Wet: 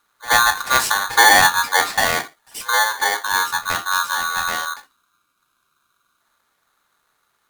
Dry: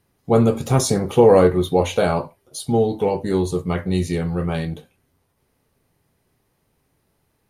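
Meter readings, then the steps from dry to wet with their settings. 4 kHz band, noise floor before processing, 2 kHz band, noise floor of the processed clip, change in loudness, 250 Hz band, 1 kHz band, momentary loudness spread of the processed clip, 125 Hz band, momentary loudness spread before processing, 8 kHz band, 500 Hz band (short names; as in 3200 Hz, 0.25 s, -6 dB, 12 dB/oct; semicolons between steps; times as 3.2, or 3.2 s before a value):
+13.0 dB, -68 dBFS, +19.0 dB, -69 dBFS, +2.5 dB, -17.5 dB, +8.5 dB, 13 LU, -19.0 dB, 12 LU, +10.0 dB, -13.0 dB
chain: spectral delete 4.87–6.21, 380–890 Hz; pre-echo 77 ms -20 dB; polarity switched at an audio rate 1300 Hz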